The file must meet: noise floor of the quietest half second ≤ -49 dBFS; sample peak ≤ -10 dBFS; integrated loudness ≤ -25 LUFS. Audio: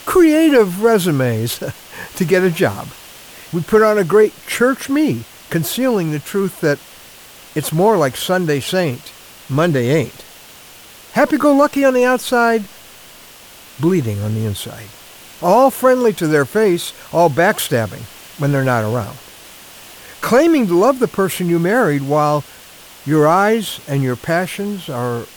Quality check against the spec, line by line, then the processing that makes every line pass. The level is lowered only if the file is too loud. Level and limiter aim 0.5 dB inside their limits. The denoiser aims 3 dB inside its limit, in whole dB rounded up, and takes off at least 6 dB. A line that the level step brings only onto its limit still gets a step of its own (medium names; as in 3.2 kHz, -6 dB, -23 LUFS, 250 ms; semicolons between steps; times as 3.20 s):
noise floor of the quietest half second -40 dBFS: fail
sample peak -2.5 dBFS: fail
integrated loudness -16.0 LUFS: fail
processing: trim -9.5 dB